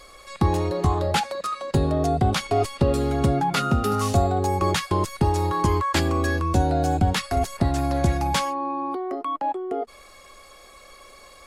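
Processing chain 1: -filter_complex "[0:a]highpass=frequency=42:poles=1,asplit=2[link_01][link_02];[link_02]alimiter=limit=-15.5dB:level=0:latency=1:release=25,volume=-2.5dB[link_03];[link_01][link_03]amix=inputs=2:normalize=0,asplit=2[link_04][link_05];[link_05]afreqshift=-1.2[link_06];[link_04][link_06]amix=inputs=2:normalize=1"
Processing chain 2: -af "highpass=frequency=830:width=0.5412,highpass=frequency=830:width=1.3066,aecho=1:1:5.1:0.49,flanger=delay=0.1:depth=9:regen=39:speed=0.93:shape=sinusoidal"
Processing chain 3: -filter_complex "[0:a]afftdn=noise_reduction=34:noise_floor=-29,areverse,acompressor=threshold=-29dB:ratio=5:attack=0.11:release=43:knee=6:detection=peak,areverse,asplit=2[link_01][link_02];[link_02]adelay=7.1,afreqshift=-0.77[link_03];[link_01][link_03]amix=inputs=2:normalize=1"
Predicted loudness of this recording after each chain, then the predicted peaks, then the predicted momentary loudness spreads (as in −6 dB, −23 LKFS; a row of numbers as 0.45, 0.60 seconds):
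−23.0, −33.0, −36.5 LKFS; −7.0, −13.5, −24.0 dBFS; 5, 21, 5 LU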